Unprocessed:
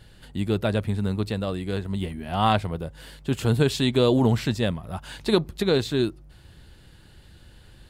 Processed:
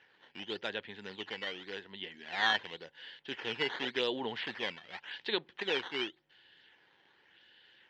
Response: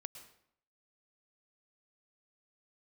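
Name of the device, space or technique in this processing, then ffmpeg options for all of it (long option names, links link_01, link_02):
circuit-bent sampling toy: -af "acrusher=samples=10:mix=1:aa=0.000001:lfo=1:lforange=16:lforate=0.89,highpass=560,equalizer=frequency=640:width_type=q:width=4:gain=-10,equalizer=frequency=1200:width_type=q:width=4:gain=-9,equalizer=frequency=1800:width_type=q:width=4:gain=8,equalizer=frequency=3100:width_type=q:width=4:gain=9,lowpass=frequency=4200:width=0.5412,lowpass=frequency=4200:width=1.3066,volume=-6.5dB"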